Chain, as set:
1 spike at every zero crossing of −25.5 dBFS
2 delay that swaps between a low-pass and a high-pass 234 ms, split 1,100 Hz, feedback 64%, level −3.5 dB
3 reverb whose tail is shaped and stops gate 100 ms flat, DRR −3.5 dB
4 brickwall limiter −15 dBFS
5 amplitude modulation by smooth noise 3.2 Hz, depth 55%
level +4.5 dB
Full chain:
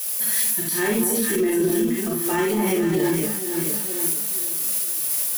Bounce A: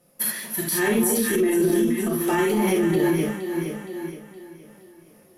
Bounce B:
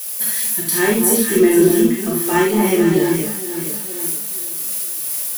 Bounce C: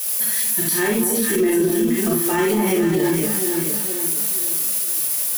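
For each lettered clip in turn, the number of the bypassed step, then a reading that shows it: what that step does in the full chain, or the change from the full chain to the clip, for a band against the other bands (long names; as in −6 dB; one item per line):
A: 1, distortion level −7 dB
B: 4, average gain reduction 3.0 dB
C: 5, change in momentary loudness spread −2 LU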